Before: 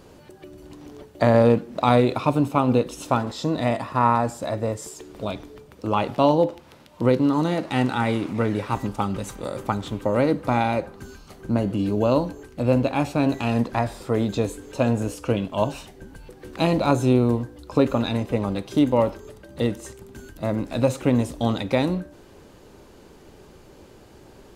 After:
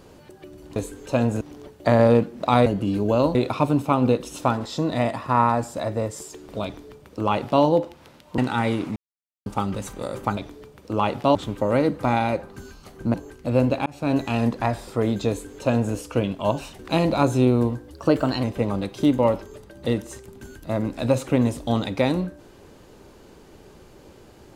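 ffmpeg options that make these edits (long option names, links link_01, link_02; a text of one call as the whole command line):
ffmpeg -i in.wav -filter_complex "[0:a]asplit=15[link_01][link_02][link_03][link_04][link_05][link_06][link_07][link_08][link_09][link_10][link_11][link_12][link_13][link_14][link_15];[link_01]atrim=end=0.762[link_16];[link_02]atrim=start=14.418:end=15.072[link_17];[link_03]atrim=start=0.758:end=2.012[link_18];[link_04]atrim=start=11.578:end=12.272[link_19];[link_05]atrim=start=2.008:end=7.042[link_20];[link_06]atrim=start=7.798:end=8.38,asetpts=PTS-STARTPTS,afade=type=out:start_time=0.578:duration=0.004:curve=hsin[link_21];[link_07]atrim=start=8.38:end=8.88,asetpts=PTS-STARTPTS,volume=0[link_22];[link_08]atrim=start=8.88:end=9.792,asetpts=PTS-STARTPTS,afade=type=in:duration=0.004:curve=hsin[link_23];[link_09]atrim=start=5.308:end=6.292[link_24];[link_10]atrim=start=9.788:end=11.582[link_25];[link_11]atrim=start=12.268:end=12.99,asetpts=PTS-STARTPTS,afade=type=out:start_time=0.718:duration=0.004:curve=hsin[link_26];[link_12]atrim=start=12.99:end=15.922,asetpts=PTS-STARTPTS,afade=type=in:duration=0.28[link_27];[link_13]atrim=start=16.468:end=17.614[link_28];[link_14]atrim=start=17.61:end=18.17,asetpts=PTS-STARTPTS,asetrate=48951,aresample=44100[link_29];[link_15]atrim=start=18.166[link_30];[link_16][link_17]acrossfade=duration=0.004:curve1=hsin:curve2=hsin[link_31];[link_31][link_18]acrossfade=duration=0.004:curve1=hsin:curve2=hsin[link_32];[link_32][link_19]acrossfade=duration=0.004:curve1=hsin:curve2=hsin[link_33];[link_33][link_20]acrossfade=duration=0.004:curve1=hsin:curve2=hsin[link_34];[link_21][link_22][link_23]concat=n=3:v=0:a=1[link_35];[link_34][link_35]acrossfade=duration=0.004:curve1=hsin:curve2=hsin[link_36];[link_36][link_24]acrossfade=duration=0.004:curve1=hsin:curve2=hsin[link_37];[link_37][link_25]acrossfade=duration=0.004:curve1=hsin:curve2=hsin[link_38];[link_26][link_27]concat=n=2:v=0:a=1[link_39];[link_38][link_39]acrossfade=duration=0.004:curve1=hsin:curve2=hsin[link_40];[link_40][link_28]acrossfade=duration=0.004:curve1=hsin:curve2=hsin[link_41];[link_41][link_29]acrossfade=duration=0.004:curve1=hsin:curve2=hsin[link_42];[link_42][link_30]acrossfade=duration=0.004:curve1=hsin:curve2=hsin" out.wav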